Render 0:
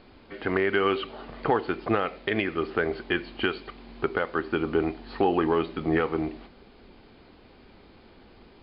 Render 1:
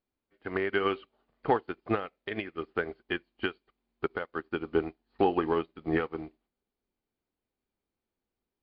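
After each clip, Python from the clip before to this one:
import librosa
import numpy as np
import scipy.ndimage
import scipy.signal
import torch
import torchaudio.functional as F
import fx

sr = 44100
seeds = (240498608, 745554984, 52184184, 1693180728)

y = fx.upward_expand(x, sr, threshold_db=-44.0, expansion=2.5)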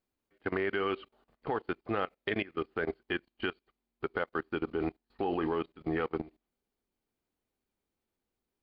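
y = fx.level_steps(x, sr, step_db=19)
y = F.gain(torch.from_numpy(y), 7.5).numpy()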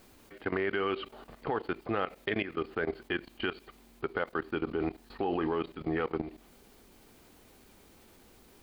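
y = fx.env_flatten(x, sr, amount_pct=50)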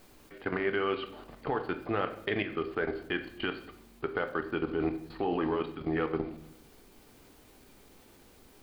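y = fx.room_shoebox(x, sr, seeds[0], volume_m3=140.0, walls='mixed', distance_m=0.39)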